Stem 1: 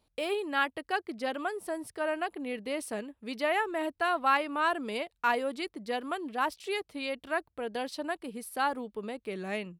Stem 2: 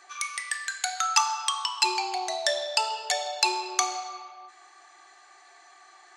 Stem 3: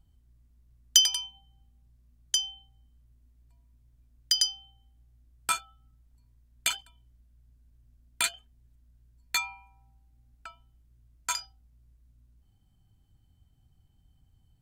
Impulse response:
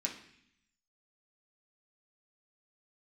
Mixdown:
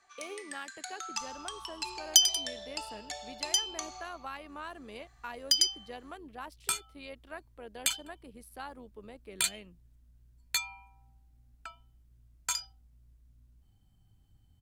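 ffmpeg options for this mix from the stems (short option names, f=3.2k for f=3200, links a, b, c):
-filter_complex "[0:a]tremolo=f=91:d=0.462,volume=-9dB[a];[1:a]volume=-13.5dB[b];[2:a]adelay=1200,volume=0dB[c];[a][b][c]amix=inputs=3:normalize=0,acrossover=split=220|3000[d][e][f];[e]acompressor=threshold=-38dB:ratio=6[g];[d][g][f]amix=inputs=3:normalize=0"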